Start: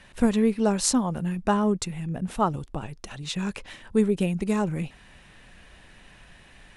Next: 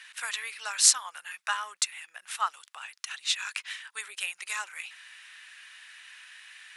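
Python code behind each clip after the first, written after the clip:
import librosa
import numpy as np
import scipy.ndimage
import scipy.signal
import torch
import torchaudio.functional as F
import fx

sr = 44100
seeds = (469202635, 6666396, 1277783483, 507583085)

y = scipy.signal.sosfilt(scipy.signal.butter(4, 1400.0, 'highpass', fs=sr, output='sos'), x)
y = F.gain(torch.from_numpy(y), 6.0).numpy()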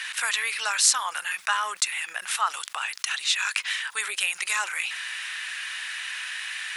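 y = fx.env_flatten(x, sr, amount_pct=50)
y = F.gain(torch.from_numpy(y), -1.0).numpy()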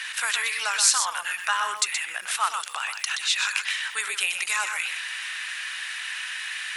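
y = x + 10.0 ** (-7.0 / 20.0) * np.pad(x, (int(124 * sr / 1000.0), 0))[:len(x)]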